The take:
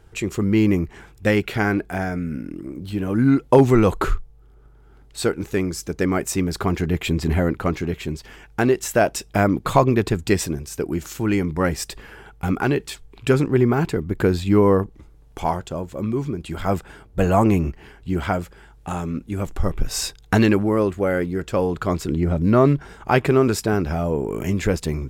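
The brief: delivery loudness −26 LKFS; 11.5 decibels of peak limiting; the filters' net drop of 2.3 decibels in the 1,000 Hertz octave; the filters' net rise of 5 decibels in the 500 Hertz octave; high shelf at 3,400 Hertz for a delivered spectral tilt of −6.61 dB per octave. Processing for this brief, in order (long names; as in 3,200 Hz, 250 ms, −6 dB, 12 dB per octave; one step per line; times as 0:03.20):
parametric band 500 Hz +8 dB
parametric band 1,000 Hz −6.5 dB
high-shelf EQ 3,400 Hz −7 dB
level −4.5 dB
brickwall limiter −14 dBFS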